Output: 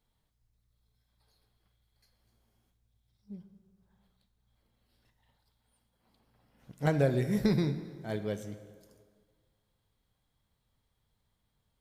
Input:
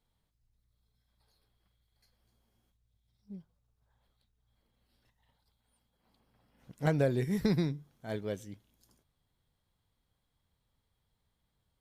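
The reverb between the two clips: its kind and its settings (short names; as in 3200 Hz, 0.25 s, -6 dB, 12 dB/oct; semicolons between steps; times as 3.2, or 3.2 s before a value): plate-style reverb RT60 1.8 s, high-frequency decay 0.7×, DRR 9 dB; gain +1 dB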